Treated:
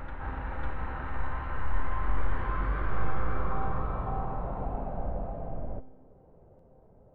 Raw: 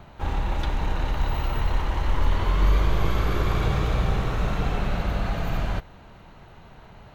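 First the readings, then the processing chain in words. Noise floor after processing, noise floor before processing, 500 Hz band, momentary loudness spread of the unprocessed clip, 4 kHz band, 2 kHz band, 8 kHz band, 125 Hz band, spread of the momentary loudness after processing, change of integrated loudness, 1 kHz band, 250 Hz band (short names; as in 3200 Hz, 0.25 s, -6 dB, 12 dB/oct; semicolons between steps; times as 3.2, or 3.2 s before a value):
-57 dBFS, -48 dBFS, -7.0 dB, 5 LU, -21.5 dB, -6.5 dB, under -30 dB, -10.0 dB, 6 LU, -8.5 dB, -4.0 dB, -9.0 dB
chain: resonator 260 Hz, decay 0.88 s, mix 80%; low-pass sweep 1600 Hz -> 520 Hz, 2.98–5.99; reverse echo 0.55 s -3.5 dB; gain +1.5 dB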